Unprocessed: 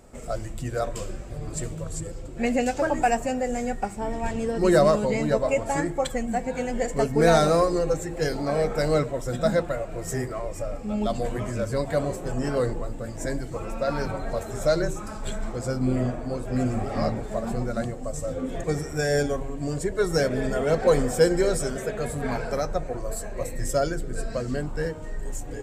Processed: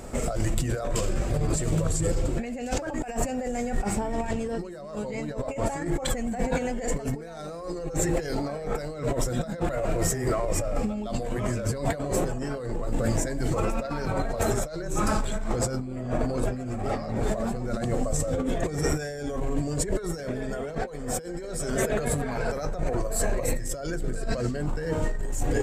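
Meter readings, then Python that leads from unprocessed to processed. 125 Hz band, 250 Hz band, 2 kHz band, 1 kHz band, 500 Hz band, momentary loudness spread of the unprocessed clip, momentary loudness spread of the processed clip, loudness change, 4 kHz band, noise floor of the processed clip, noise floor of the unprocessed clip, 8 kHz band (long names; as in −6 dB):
+0.5 dB, −2.0 dB, −3.5 dB, −4.0 dB, −5.0 dB, 12 LU, 6 LU, −3.0 dB, −3.0 dB, −37 dBFS, −36 dBFS, +3.5 dB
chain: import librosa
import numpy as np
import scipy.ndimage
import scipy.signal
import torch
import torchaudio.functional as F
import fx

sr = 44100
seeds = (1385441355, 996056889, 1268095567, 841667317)

y = fx.over_compress(x, sr, threshold_db=-34.0, ratio=-1.0)
y = F.gain(torch.from_numpy(y), 5.0).numpy()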